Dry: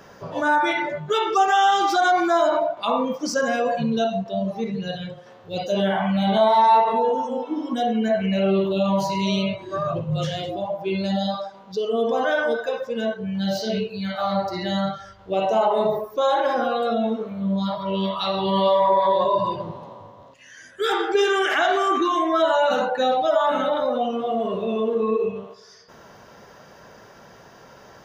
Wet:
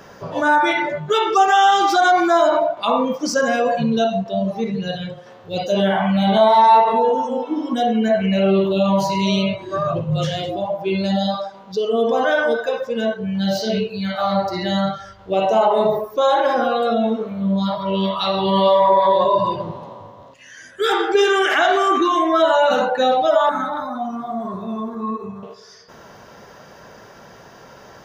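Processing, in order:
0:23.49–0:25.43: phaser with its sweep stopped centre 1,200 Hz, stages 4
level +4 dB

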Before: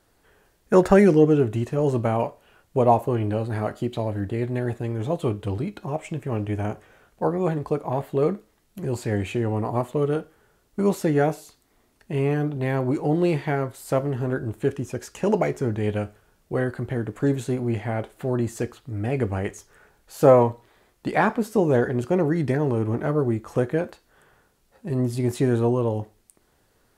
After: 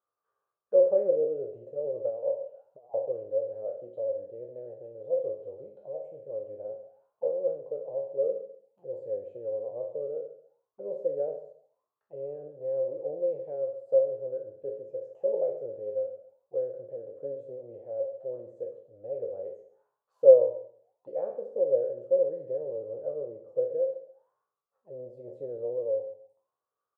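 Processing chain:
peak hold with a decay on every bin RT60 0.49 s
octave-band graphic EQ 125/250/500/1,000/2,000 Hz +10/−6/+11/−6/−9 dB
0:02.10–0:02.94: compressor whose output falls as the input rises −21 dBFS, ratio −0.5
envelope filter 540–1,200 Hz, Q 16, down, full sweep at −22.5 dBFS
repeating echo 135 ms, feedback 22%, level −14 dB
level −3.5 dB

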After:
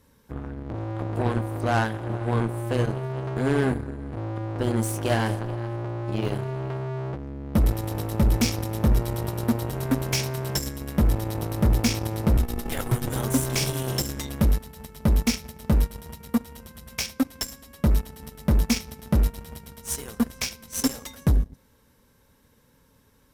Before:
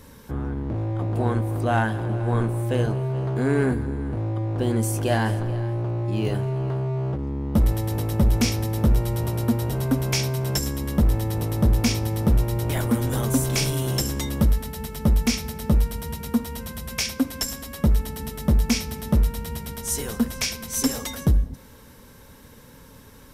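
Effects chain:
0:12.37–0:13.07: frequency shifter −110 Hz
harmonic generator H 5 −31 dB, 7 −18 dB, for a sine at −10.5 dBFS
level −1.5 dB

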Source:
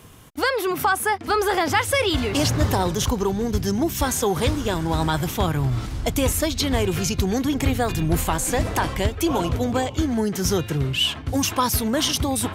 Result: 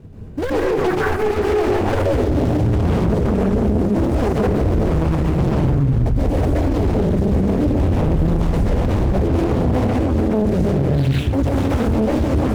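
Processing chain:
running median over 41 samples
low-shelf EQ 270 Hz +7.5 dB
dense smooth reverb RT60 0.78 s, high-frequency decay 0.55×, pre-delay 115 ms, DRR −5.5 dB
brickwall limiter −12.5 dBFS, peak gain reduction 14 dB
highs frequency-modulated by the lows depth 0.88 ms
level +3 dB

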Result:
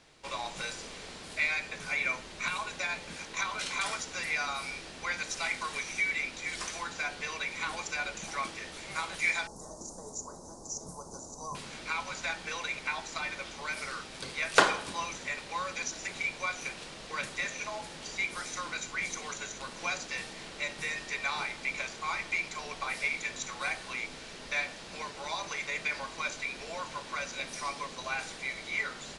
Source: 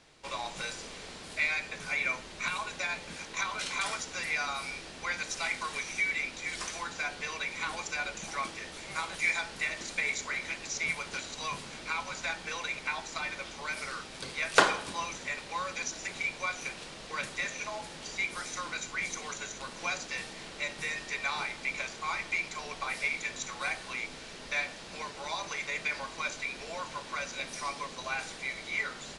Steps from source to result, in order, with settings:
0:09.47–0:11.55: Chebyshev band-stop filter 990–6,000 Hz, order 3

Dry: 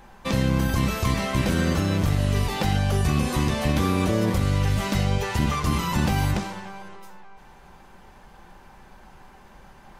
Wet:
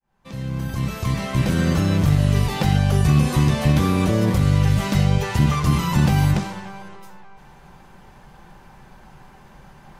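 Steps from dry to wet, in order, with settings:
fade in at the beginning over 1.83 s
parametric band 140 Hz +8.5 dB 0.66 octaves
level +1.5 dB

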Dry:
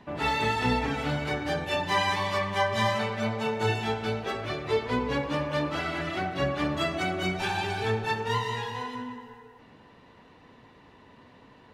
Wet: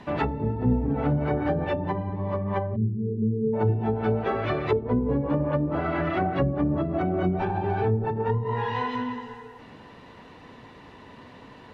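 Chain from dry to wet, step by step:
treble cut that deepens with the level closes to 310 Hz, closed at −23.5 dBFS
time-frequency box erased 0:02.76–0:03.54, 460–7,800 Hz
level +7 dB

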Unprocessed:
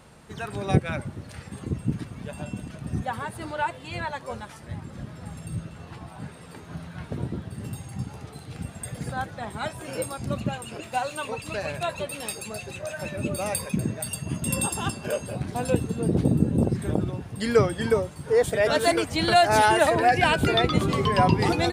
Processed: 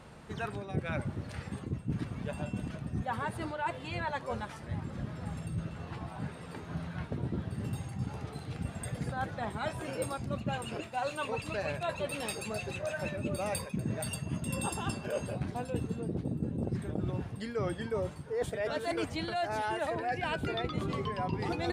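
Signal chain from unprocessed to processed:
high-shelf EQ 6,000 Hz −10 dB
reversed playback
downward compressor 12 to 1, threshold −30 dBFS, peak gain reduction 17.5 dB
reversed playback

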